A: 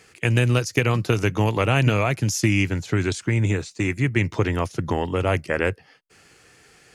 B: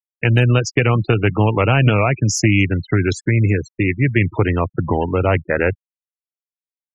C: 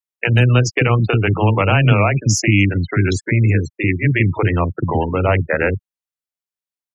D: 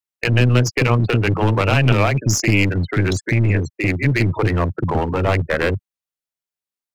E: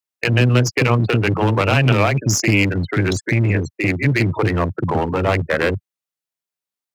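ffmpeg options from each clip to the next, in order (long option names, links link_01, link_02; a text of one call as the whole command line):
ffmpeg -i in.wav -af "acontrast=82,afftfilt=real='re*gte(hypot(re,im),0.1)':imag='im*gte(hypot(re,im),0.1)':win_size=1024:overlap=0.75,volume=-1dB" out.wav
ffmpeg -i in.wav -filter_complex "[0:a]acrossover=split=360[link_01][link_02];[link_01]adelay=40[link_03];[link_03][link_02]amix=inputs=2:normalize=0,volume=1.5dB" out.wav
ffmpeg -i in.wav -af "aeval=exprs='clip(val(0),-1,0.141)':channel_layout=same" out.wav
ffmpeg -i in.wav -af "highpass=93,volume=1dB" out.wav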